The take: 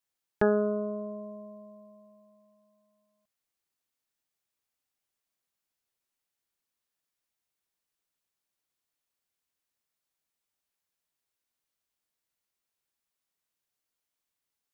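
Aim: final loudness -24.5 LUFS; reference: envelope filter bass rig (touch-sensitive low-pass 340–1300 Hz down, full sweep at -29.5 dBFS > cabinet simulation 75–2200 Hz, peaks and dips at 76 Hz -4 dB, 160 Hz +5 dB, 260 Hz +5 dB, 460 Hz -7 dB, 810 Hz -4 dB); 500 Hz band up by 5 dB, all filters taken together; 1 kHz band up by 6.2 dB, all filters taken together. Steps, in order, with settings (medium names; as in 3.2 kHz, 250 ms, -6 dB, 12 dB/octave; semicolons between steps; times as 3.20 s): peaking EQ 500 Hz +8.5 dB; peaking EQ 1 kHz +8 dB; touch-sensitive low-pass 340–1300 Hz down, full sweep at -29.5 dBFS; cabinet simulation 75–2200 Hz, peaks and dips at 76 Hz -4 dB, 160 Hz +5 dB, 260 Hz +5 dB, 460 Hz -7 dB, 810 Hz -4 dB; trim -0.5 dB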